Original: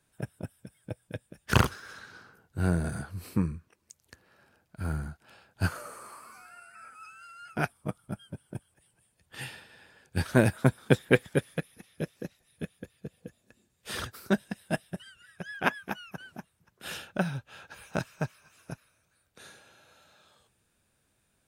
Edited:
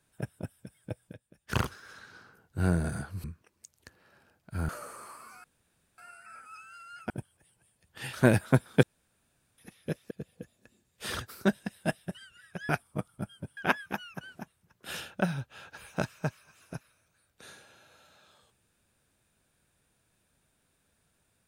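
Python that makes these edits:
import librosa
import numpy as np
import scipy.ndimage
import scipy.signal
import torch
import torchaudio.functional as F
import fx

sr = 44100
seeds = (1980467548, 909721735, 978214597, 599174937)

y = fx.edit(x, sr, fx.fade_in_from(start_s=1.13, length_s=1.45, floor_db=-13.5),
    fx.cut(start_s=3.24, length_s=0.26),
    fx.cut(start_s=4.95, length_s=0.77),
    fx.insert_room_tone(at_s=6.47, length_s=0.54),
    fx.move(start_s=7.59, length_s=0.88, to_s=15.54),
    fx.cut(start_s=9.5, length_s=0.75),
    fx.room_tone_fill(start_s=10.95, length_s=0.75),
    fx.cut(start_s=12.23, length_s=0.73), tone=tone)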